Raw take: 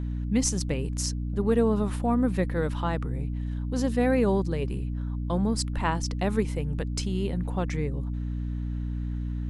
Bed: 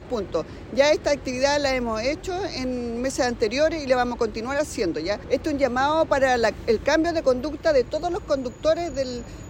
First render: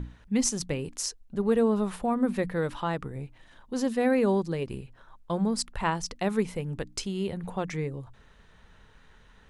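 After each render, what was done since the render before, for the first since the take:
mains-hum notches 60/120/180/240/300 Hz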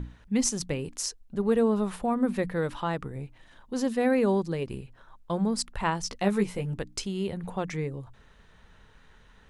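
0:06.03–0:06.74: double-tracking delay 15 ms −4 dB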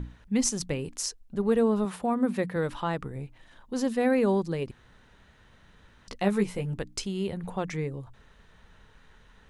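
0:01.85–0:02.56: high-pass filter 91 Hz
0:04.71–0:06.08: fill with room tone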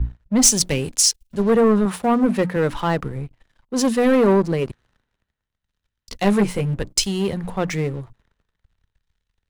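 leveller curve on the samples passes 3
multiband upward and downward expander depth 70%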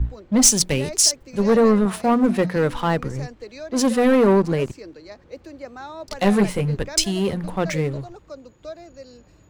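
mix in bed −15 dB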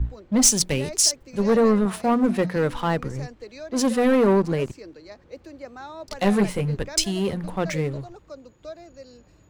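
level −2.5 dB

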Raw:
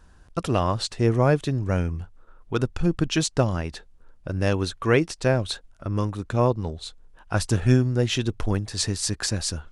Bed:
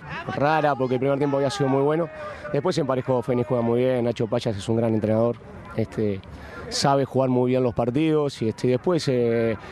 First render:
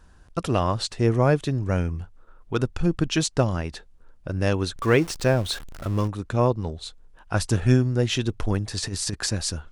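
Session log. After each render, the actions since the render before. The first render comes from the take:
0:04.76–0:06.08: converter with a step at zero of −33.5 dBFS
0:08.60–0:09.15: compressor whose output falls as the input rises −27 dBFS, ratio −0.5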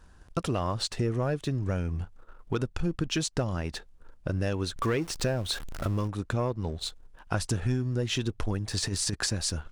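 leveller curve on the samples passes 1
downward compressor 4 to 1, threshold −27 dBFS, peak gain reduction 13.5 dB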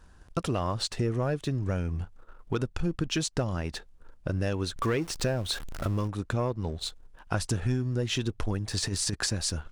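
no processing that can be heard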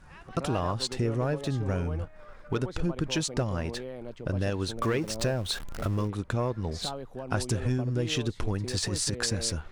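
mix in bed −18 dB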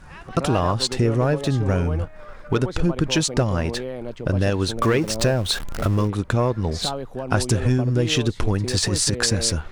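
level +8.5 dB

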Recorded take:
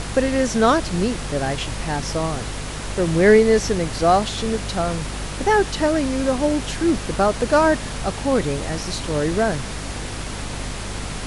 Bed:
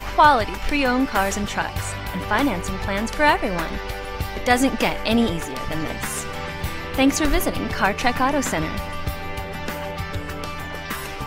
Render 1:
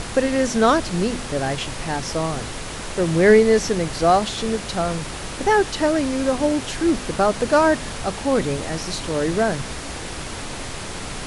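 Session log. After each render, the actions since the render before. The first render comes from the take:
hum removal 50 Hz, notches 5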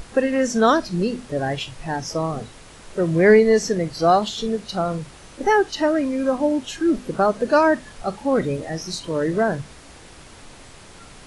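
noise reduction from a noise print 13 dB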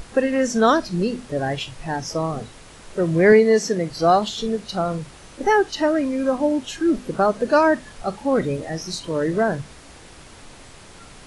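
0:03.32–0:03.90: high-pass filter 130 Hz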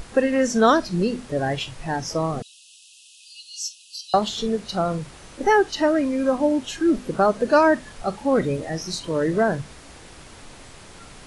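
0:02.42–0:04.14: linear-phase brick-wall high-pass 2,500 Hz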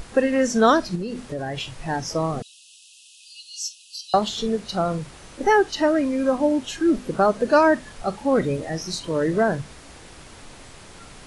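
0:00.95–0:01.82: downward compressor, threshold −25 dBFS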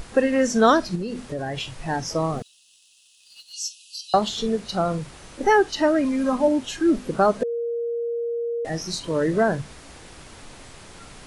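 0:02.37–0:03.53: mu-law and A-law mismatch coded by A
0:06.04–0:06.48: comb filter 4.8 ms, depth 58%
0:07.43–0:08.65: beep over 469 Hz −23.5 dBFS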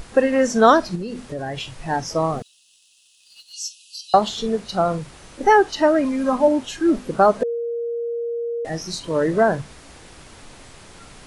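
dynamic equaliser 830 Hz, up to +5 dB, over −29 dBFS, Q 0.76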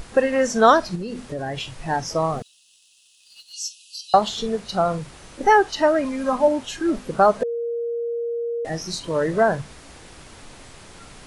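dynamic equaliser 290 Hz, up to −5 dB, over −29 dBFS, Q 1.3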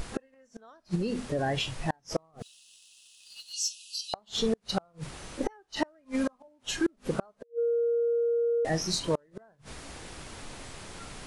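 gate with flip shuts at −15 dBFS, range −40 dB
soft clipping −15.5 dBFS, distortion −25 dB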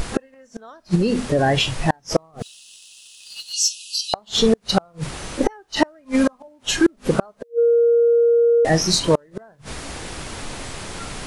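level +11.5 dB

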